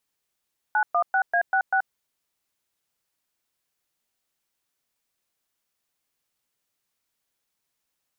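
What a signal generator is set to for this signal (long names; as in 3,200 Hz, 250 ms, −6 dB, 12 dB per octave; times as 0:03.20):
touch tones "916A66", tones 80 ms, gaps 115 ms, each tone −21 dBFS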